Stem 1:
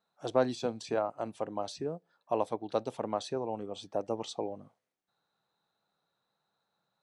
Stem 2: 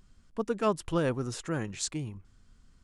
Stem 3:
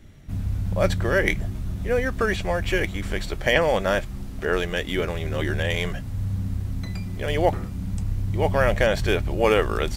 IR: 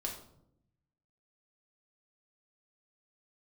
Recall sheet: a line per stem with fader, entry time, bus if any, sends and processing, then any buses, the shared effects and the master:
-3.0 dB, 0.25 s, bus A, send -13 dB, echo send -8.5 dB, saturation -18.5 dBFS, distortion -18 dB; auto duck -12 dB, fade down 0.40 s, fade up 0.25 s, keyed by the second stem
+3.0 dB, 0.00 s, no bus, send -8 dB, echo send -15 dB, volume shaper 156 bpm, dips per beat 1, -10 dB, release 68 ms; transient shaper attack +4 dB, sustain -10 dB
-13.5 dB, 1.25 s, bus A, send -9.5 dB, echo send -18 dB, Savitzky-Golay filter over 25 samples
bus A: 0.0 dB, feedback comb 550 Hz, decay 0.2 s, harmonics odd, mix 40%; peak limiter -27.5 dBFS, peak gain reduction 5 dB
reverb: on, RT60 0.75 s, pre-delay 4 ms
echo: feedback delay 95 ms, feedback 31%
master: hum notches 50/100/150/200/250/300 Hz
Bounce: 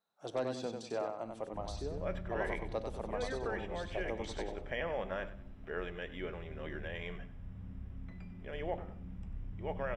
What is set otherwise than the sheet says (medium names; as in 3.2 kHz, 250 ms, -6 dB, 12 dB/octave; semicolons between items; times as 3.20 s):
stem 1: entry 0.25 s -> 0.00 s; stem 2: muted; reverb return -6.5 dB